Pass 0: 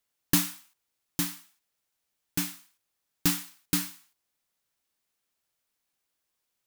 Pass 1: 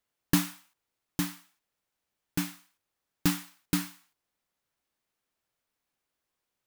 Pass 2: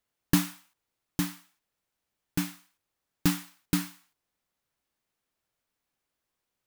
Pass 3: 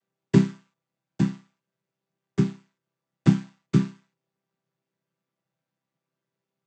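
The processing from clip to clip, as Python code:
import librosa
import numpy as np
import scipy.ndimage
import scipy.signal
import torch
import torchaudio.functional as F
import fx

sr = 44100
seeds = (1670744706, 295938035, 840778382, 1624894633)

y1 = fx.high_shelf(x, sr, hz=2900.0, db=-8.5)
y1 = y1 * 10.0 ** (2.0 / 20.0)
y2 = fx.low_shelf(y1, sr, hz=220.0, db=3.0)
y3 = fx.chord_vocoder(y2, sr, chord='major triad', root=48)
y3 = y3 * 10.0 ** (8.0 / 20.0)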